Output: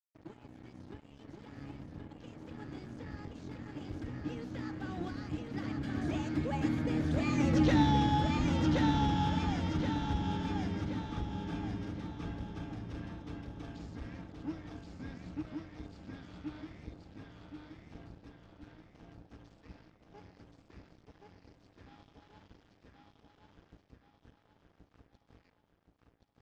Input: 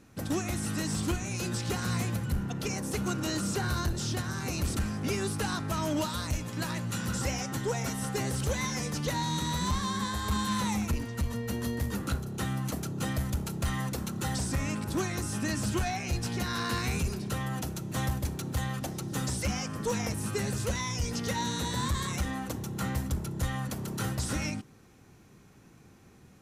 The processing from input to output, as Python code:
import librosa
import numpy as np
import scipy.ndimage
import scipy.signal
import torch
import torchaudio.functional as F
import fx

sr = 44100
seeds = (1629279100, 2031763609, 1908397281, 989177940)

p1 = fx.octave_divider(x, sr, octaves=1, level_db=-1.0)
p2 = fx.doppler_pass(p1, sr, speed_mps=54, closest_m=12.0, pass_at_s=7.68)
p3 = scipy.signal.sosfilt(scipy.signal.butter(2, 56.0, 'highpass', fs=sr, output='sos'), p2)
p4 = fx.peak_eq(p3, sr, hz=950.0, db=-11.5, octaves=0.3)
p5 = fx.notch(p4, sr, hz=360.0, q=12.0)
p6 = fx.over_compress(p5, sr, threshold_db=-47.0, ratio=-0.5)
p7 = p5 + F.gain(torch.from_numpy(p6), -3.0).numpy()
p8 = 10.0 ** (-29.0 / 20.0) * np.tanh(p7 / 10.0 ** (-29.0 / 20.0))
p9 = fx.small_body(p8, sr, hz=(300.0, 840.0), ring_ms=70, db=13)
p10 = np.sign(p9) * np.maximum(np.abs(p9) - 10.0 ** (-55.5 / 20.0), 0.0)
p11 = fx.air_absorb(p10, sr, metres=200.0)
p12 = p11 + fx.echo_feedback(p11, sr, ms=1075, feedback_pct=44, wet_db=-3, dry=0)
y = F.gain(torch.from_numpy(p12), 6.5).numpy()